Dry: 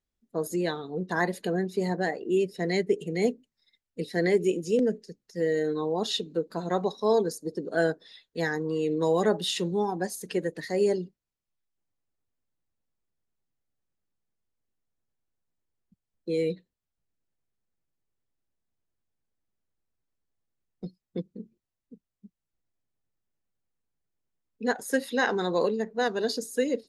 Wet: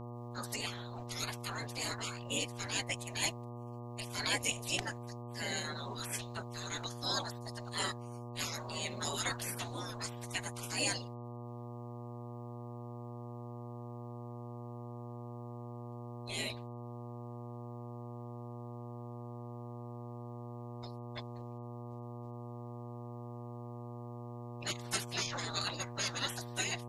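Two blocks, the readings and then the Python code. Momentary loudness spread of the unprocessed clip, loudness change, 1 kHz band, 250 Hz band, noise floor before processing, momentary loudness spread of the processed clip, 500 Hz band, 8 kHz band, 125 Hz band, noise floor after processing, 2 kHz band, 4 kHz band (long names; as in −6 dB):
14 LU, −11.5 dB, −7.5 dB, −13.0 dB, below −85 dBFS, 11 LU, −18.0 dB, +4.0 dB, −2.5 dB, −46 dBFS, −6.0 dB, 0.0 dB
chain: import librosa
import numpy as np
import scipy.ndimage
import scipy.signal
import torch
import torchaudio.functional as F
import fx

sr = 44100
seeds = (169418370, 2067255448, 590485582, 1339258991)

y = fx.spec_gate(x, sr, threshold_db=-30, keep='weak')
y = fx.dmg_buzz(y, sr, base_hz=120.0, harmonics=10, level_db=-57.0, tilt_db=-5, odd_only=False)
y = y * librosa.db_to_amplitude(12.0)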